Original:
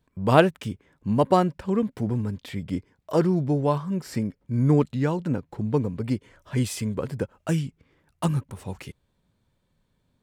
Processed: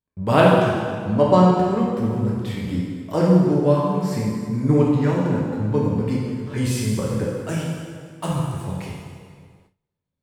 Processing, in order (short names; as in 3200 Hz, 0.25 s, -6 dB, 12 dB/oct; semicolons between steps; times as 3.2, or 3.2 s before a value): 0.57–1.5 LPF 7900 Hz 24 dB/oct; 7.36–8.31 low shelf 240 Hz -8 dB; plate-style reverb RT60 2 s, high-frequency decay 0.8×, DRR -4.5 dB; gate with hold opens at -45 dBFS; gain -1 dB